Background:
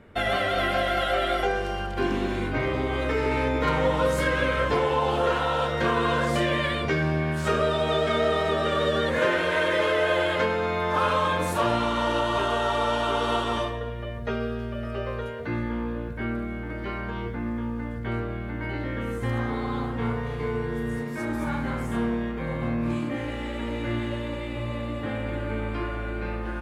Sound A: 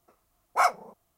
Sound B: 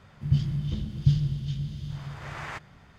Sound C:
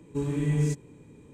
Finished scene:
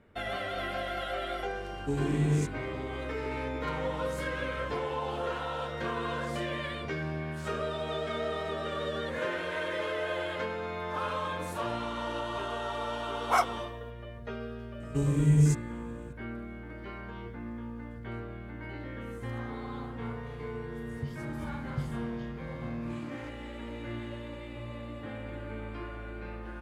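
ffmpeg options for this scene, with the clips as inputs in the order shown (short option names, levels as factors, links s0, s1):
-filter_complex "[3:a]asplit=2[s0][s1];[0:a]volume=0.316[s2];[s1]bass=f=250:g=10,treble=f=4000:g=9[s3];[s0]atrim=end=1.33,asetpts=PTS-STARTPTS,volume=0.794,afade=t=in:d=0.004:c=hsin,afade=t=out:st=1.326:d=0.004:c=hsin,adelay=1720[s4];[1:a]atrim=end=1.17,asetpts=PTS-STARTPTS,volume=0.708,afade=t=in:d=0.004:c=hsin,afade=t=out:st=1.166:d=0.004:c=hsin,adelay=12740[s5];[s3]atrim=end=1.33,asetpts=PTS-STARTPTS,volume=0.562,afade=t=in:d=0.004:c=hsin,afade=t=out:st=1.326:d=0.004:c=hsin,adelay=14800[s6];[2:a]atrim=end=2.98,asetpts=PTS-STARTPTS,volume=0.2,afade=t=in:d=0.004:c=hsin,afade=t=out:st=2.976:d=0.004:c=hsin,adelay=20710[s7];[s2][s4][s5][s6][s7]amix=inputs=5:normalize=0"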